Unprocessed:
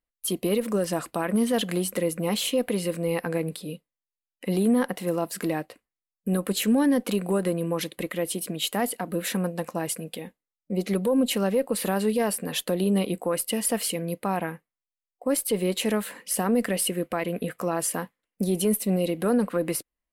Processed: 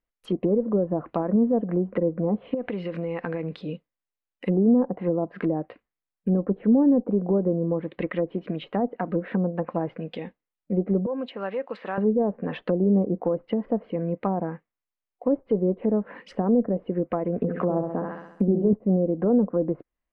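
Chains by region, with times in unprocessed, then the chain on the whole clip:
2.54–3.61 high shelf 4700 Hz +8.5 dB + compressor 12:1, threshold -27 dBFS
11.06–11.98 HPF 1200 Hz 6 dB/oct + high shelf 7100 Hz +4.5 dB
17.37–18.73 flutter echo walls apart 11.4 m, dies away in 0.67 s + three-band squash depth 40%
whole clip: treble ducked by the level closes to 720 Hz, closed at -23 dBFS; LPF 2600 Hz 12 dB/oct; treble ducked by the level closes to 950 Hz, closed at -23 dBFS; gain +3 dB

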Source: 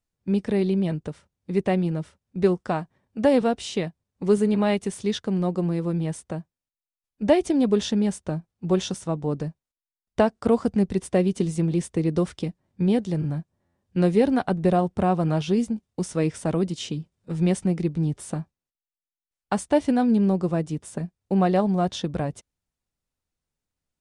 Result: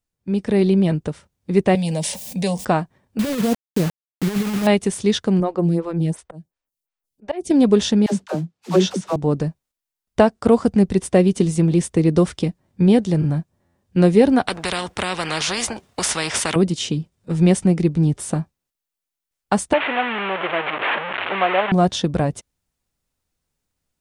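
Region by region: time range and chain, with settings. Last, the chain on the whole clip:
1.75–2.65 tilt +3 dB/oct + fixed phaser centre 360 Hz, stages 6 + fast leveller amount 70%
3.19–4.67 band-pass 130 Hz, Q 0.52 + negative-ratio compressor -26 dBFS, ratio -0.5 + requantised 6-bit, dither none
5.4–7.51 auto swell 0.256 s + photocell phaser 2.8 Hz
8.06–9.16 modulation noise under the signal 22 dB + BPF 160–5900 Hz + dispersion lows, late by 71 ms, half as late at 460 Hz
14.47–16.56 HPF 330 Hz 6 dB/oct + high shelf 3700 Hz -10.5 dB + spectral compressor 4:1
19.73–21.72 delta modulation 16 kbps, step -19.5 dBFS + HPF 660 Hz
whole clip: high shelf 8400 Hz +3.5 dB; AGC gain up to 7.5 dB

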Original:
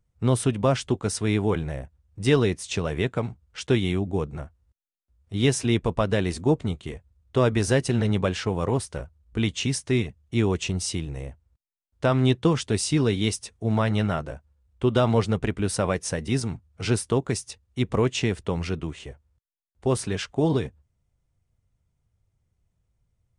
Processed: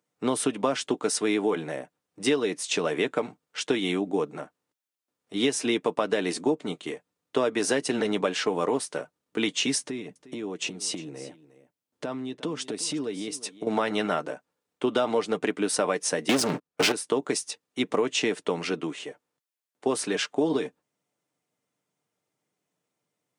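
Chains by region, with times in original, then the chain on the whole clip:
9.8–13.67 low shelf 410 Hz +8.5 dB + compressor 10:1, threshold -28 dBFS + echo 0.356 s -17 dB
16.29–16.92 high shelf 8900 Hz -5.5 dB + sample leveller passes 5
whole clip: HPF 240 Hz 24 dB/oct; comb 6.7 ms, depth 33%; compressor, threshold -24 dBFS; gain +3.5 dB

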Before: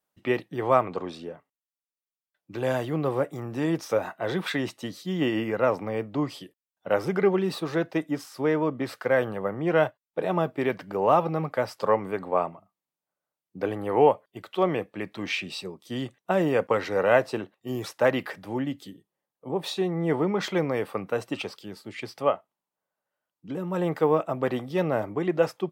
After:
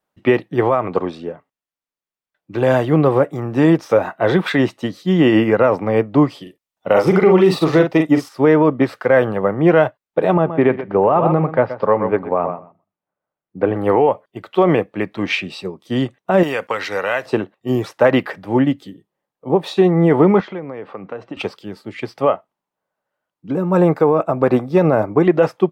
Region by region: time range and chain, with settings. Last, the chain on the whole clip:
6.42–8.29 high shelf 3000 Hz +5.5 dB + notch 1600 Hz, Q 8.2 + doubler 44 ms -5.5 dB
10.34–13.76 air absorption 350 m + feedback echo 0.124 s, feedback 16%, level -11 dB
16.43–17.26 tilt shelf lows -10 dB, about 1300 Hz + compressor 3:1, threshold -28 dBFS
20.4–21.37 compressor 4:1, threshold -35 dBFS + HPF 120 Hz + air absorption 180 m
23.5–25.24 bell 3100 Hz -13.5 dB 0.25 oct + notch 1900 Hz, Q 8
whole clip: high shelf 4000 Hz -11.5 dB; maximiser +18 dB; upward expander 1.5:1, over -22 dBFS; gain -2 dB

